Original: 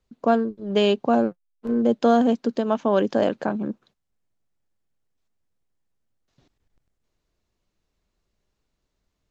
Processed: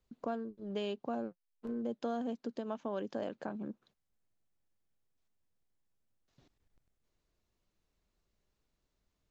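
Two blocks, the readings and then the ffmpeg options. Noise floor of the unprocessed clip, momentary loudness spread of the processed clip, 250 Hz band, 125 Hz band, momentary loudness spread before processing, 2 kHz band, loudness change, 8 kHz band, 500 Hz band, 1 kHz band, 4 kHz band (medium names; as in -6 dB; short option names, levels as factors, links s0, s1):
-78 dBFS, 7 LU, -17.0 dB, -16.5 dB, 10 LU, -18.0 dB, -17.5 dB, no reading, -18.0 dB, -18.5 dB, -18.0 dB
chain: -af "acompressor=threshold=0.01:ratio=2,volume=0.562"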